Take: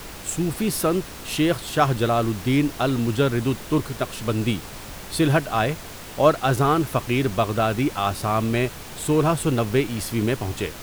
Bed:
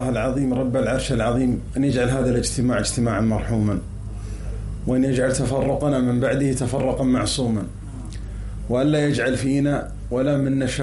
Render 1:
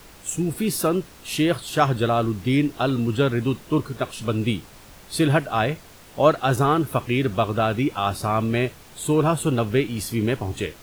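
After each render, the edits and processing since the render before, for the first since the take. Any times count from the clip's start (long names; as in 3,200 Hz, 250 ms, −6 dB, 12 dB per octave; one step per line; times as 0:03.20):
noise reduction from a noise print 9 dB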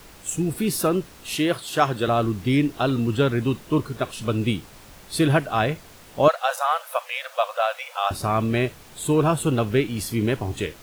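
0:01.35–0:02.08: high-pass filter 230 Hz 6 dB per octave
0:06.28–0:08.11: linear-phase brick-wall high-pass 490 Hz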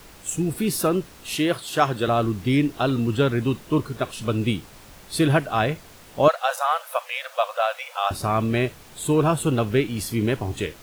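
no processing that can be heard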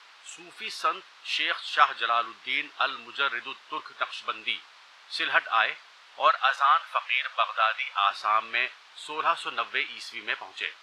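Chebyshev band-pass filter 1,100–4,100 Hz, order 2
dynamic equaliser 2,000 Hz, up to +5 dB, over −38 dBFS, Q 0.71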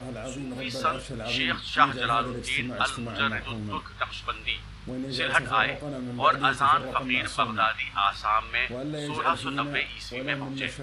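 mix in bed −14.5 dB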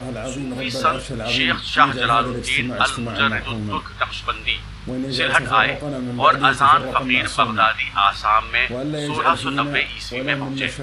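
level +8 dB
brickwall limiter −1 dBFS, peak gain reduction 3 dB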